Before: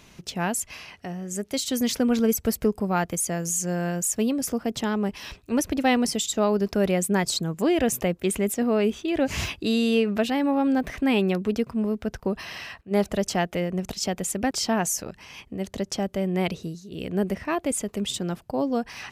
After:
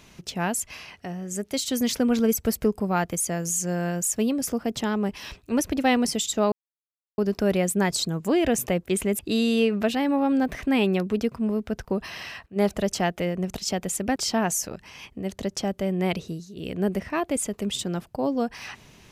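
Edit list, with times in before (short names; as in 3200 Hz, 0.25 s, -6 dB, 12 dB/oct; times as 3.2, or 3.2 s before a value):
6.52 insert silence 0.66 s
8.53–9.54 cut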